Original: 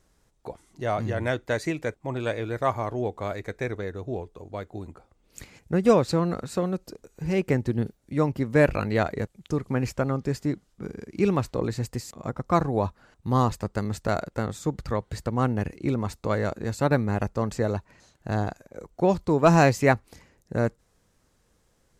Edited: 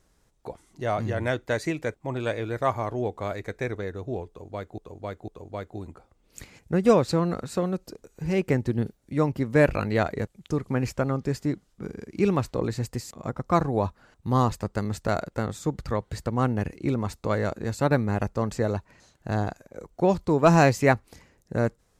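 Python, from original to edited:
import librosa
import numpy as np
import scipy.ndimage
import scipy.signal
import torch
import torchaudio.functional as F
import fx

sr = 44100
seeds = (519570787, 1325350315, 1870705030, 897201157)

y = fx.edit(x, sr, fx.repeat(start_s=4.28, length_s=0.5, count=3), tone=tone)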